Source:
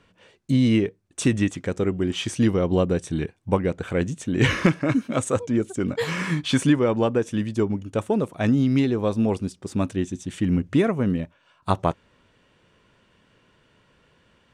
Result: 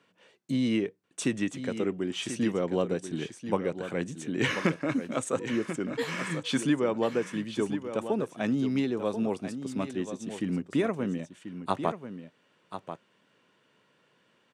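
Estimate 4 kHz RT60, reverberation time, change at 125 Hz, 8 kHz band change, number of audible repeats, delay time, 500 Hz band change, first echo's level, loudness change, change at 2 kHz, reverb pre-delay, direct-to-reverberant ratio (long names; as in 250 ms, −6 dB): no reverb audible, no reverb audible, −12.0 dB, −5.0 dB, 1, 1,038 ms, −5.5 dB, −10.0 dB, −7.0 dB, −5.0 dB, no reverb audible, no reverb audible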